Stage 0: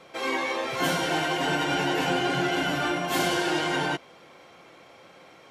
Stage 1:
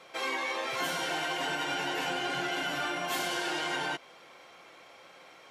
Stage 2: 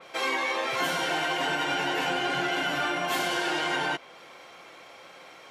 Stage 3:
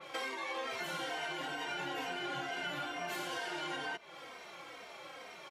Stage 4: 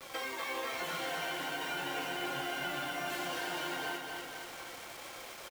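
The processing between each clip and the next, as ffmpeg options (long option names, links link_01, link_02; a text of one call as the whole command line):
ffmpeg -i in.wav -af "lowshelf=frequency=400:gain=-11.5,acompressor=threshold=-29dB:ratio=6" out.wav
ffmpeg -i in.wav -af "adynamicequalizer=threshold=0.00316:dfrequency=3800:dqfactor=0.7:tfrequency=3800:tqfactor=0.7:attack=5:release=100:ratio=0.375:range=2:mode=cutabove:tftype=highshelf,volume=5dB" out.wav
ffmpeg -i in.wav -filter_complex "[0:a]acompressor=threshold=-36dB:ratio=5,asplit=2[link_01][link_02];[link_02]adelay=3,afreqshift=-2.2[link_03];[link_01][link_03]amix=inputs=2:normalize=1,volume=1.5dB" out.wav
ffmpeg -i in.wav -filter_complex "[0:a]acrusher=bits=7:mix=0:aa=0.000001,asplit=2[link_01][link_02];[link_02]aecho=0:1:246|492|738|984|1230|1476|1722|1968:0.596|0.334|0.187|0.105|0.0586|0.0328|0.0184|0.0103[link_03];[link_01][link_03]amix=inputs=2:normalize=0" out.wav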